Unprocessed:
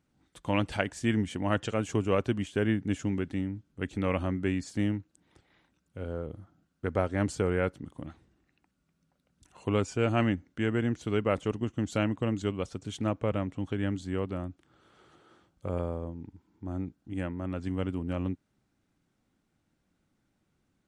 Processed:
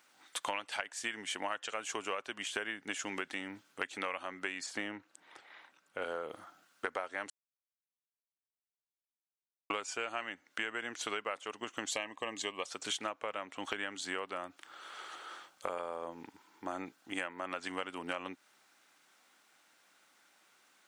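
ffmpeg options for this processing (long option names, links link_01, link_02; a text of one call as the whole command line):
ffmpeg -i in.wav -filter_complex "[0:a]asettb=1/sr,asplit=3[link_01][link_02][link_03];[link_01]atrim=end=4.664[link_04];[link_02]atrim=start=4.66:end=6.02,asetpts=PTS-STARTPTS,afade=type=in:duration=0.004:curve=qsin,afade=type=out:start_time=1.356:duration=0.004:curve=qsin,highshelf=frequency=3100:gain=-11.5[link_05];[link_03]atrim=start=6.016[link_06];[link_04][link_05]acrossfade=duration=0.004:curve1=hsin:curve2=qsin[link_07];[link_07][link_06]acrossfade=duration=0.004:curve1=qsin:curve2=hsin,asettb=1/sr,asplit=3[link_08][link_09][link_10];[link_08]atrim=end=11.904[link_11];[link_09]atrim=start=11.9:end=12.66,asetpts=PTS-STARTPTS,afade=type=in:duration=0.004:curve=qsin,afade=type=out:start_time=0.756:duration=0.004:curve=qsin,asuperstop=centerf=1400:order=8:qfactor=4.7[link_12];[link_10]atrim=start=12.656[link_13];[link_11][link_12]acrossfade=duration=0.004:curve1=hsin:curve2=qsin[link_14];[link_14][link_13]acrossfade=duration=0.004:curve1=qsin:curve2=hsin,asplit=3[link_15][link_16][link_17];[link_15]atrim=end=7.3,asetpts=PTS-STARTPTS,afade=type=out:start_time=7.296:duration=0.004:curve=hsin[link_18];[link_16]atrim=start=7.3:end=9.7,asetpts=PTS-STARTPTS,volume=0[link_19];[link_17]atrim=start=9.7,asetpts=PTS-STARTPTS,afade=type=in:duration=0.004:curve=hsin[link_20];[link_18][link_19][link_20]concat=n=3:v=0:a=1,highpass=940,acompressor=threshold=-50dB:ratio=16,volume=16.5dB" out.wav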